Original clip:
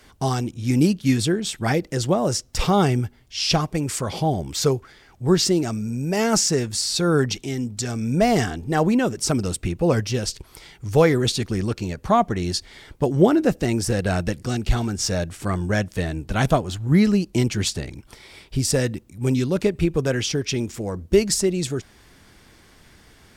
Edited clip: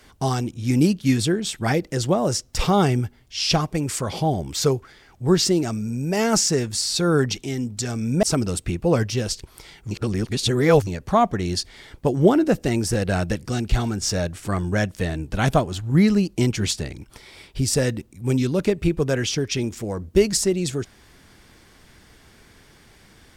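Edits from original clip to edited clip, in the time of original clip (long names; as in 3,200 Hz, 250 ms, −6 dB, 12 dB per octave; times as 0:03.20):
0:08.23–0:09.20: remove
0:10.88–0:11.84: reverse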